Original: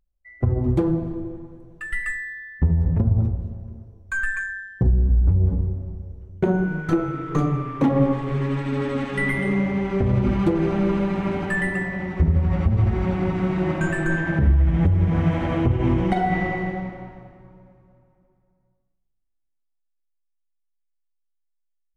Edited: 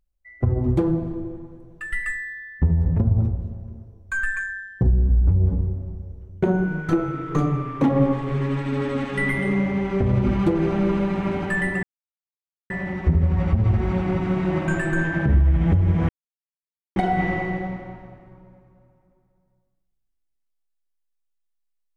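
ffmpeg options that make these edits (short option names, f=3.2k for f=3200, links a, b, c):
-filter_complex "[0:a]asplit=4[a][b][c][d];[a]atrim=end=11.83,asetpts=PTS-STARTPTS,afade=t=out:st=11.826:d=0.004:c=hsin,apad=pad_dur=0.87[e];[b]atrim=start=11.83:end=15.22,asetpts=PTS-STARTPTS,afade=t=in:d=0.004:c=hsin,afade=t=out:st=3.386:d=0.004:c=hsin[f];[c]atrim=start=15.22:end=16.09,asetpts=PTS-STARTPTS,volume=0[g];[d]atrim=start=16.09,asetpts=PTS-STARTPTS,afade=t=in:d=0.004:c=hsin[h];[e][f][g][h]concat=n=4:v=0:a=1"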